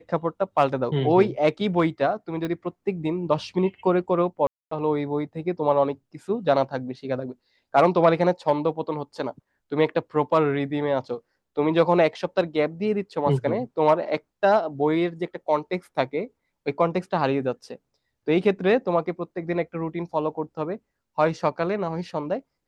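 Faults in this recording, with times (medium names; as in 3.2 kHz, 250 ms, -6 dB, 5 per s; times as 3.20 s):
2.45 s: pop -17 dBFS
4.47–4.71 s: dropout 244 ms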